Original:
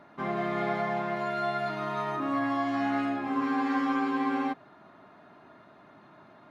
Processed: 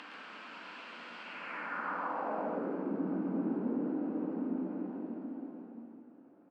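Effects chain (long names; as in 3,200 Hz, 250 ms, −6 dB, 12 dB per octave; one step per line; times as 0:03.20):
cochlear-implant simulation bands 8
extreme stretch with random phases 4.2×, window 1.00 s, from 0:03.47
band-pass filter sweep 3,400 Hz → 300 Hz, 0:01.16–0:02.93
dynamic equaliser 3,200 Hz, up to −5 dB, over −55 dBFS, Q 0.95
on a send: multi-tap delay 116/138/889 ms −6/−6/−18 dB
on the sum: level −1.5 dB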